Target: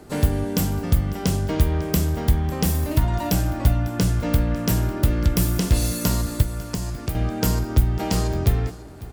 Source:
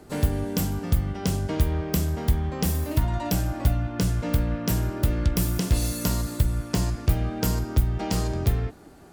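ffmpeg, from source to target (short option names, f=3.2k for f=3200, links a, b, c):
-filter_complex "[0:a]asettb=1/sr,asplit=3[a][b][c];[a]atrim=end=6.424[d];[b]atrim=start=6.42:end=7.15,asetpts=PTS-STARTPTS,afade=t=in:d=0.004:c=qsin,afade=t=out:st=0.726:d=0.004:c=qsin,acrossover=split=200|5800[e][f][g];[e]acompressor=threshold=-30dB:ratio=4[h];[f]acompressor=threshold=-37dB:ratio=4[i];[g]acompressor=threshold=-39dB:ratio=4[j];[h][i][j]amix=inputs=3:normalize=0[k];[c]atrim=start=7.146[l];[d][k]acrossfade=d=0.004:c1=hsin:c2=qsin[m];[m][l]acrossfade=d=0.004:c1=qsin:c2=hsin,aecho=1:1:549:0.119,volume=3.5dB"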